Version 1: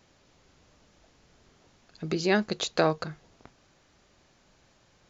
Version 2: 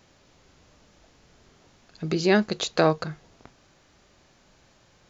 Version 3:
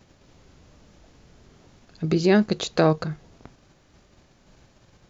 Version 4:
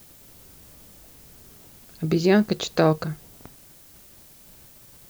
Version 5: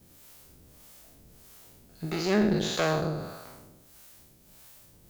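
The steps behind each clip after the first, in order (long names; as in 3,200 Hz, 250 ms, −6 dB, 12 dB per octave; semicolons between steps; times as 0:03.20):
harmonic and percussive parts rebalanced percussive −3 dB; level +5 dB
low-shelf EQ 420 Hz +7.5 dB; in parallel at 0 dB: output level in coarse steps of 11 dB; on the sum: level −5 dB
background noise blue −51 dBFS
peak hold with a decay on every bin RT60 1.35 s; tube saturation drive 11 dB, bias 0.55; two-band tremolo in antiphase 1.6 Hz, depth 70%, crossover 570 Hz; level −2 dB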